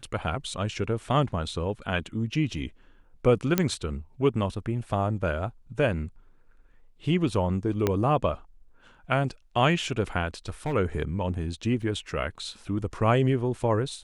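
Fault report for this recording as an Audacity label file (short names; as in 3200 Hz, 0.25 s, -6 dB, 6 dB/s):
3.580000	3.580000	pop -7 dBFS
7.870000	7.870000	pop -10 dBFS
10.340000	10.740000	clipped -25.5 dBFS
11.820000	11.820000	gap 4.1 ms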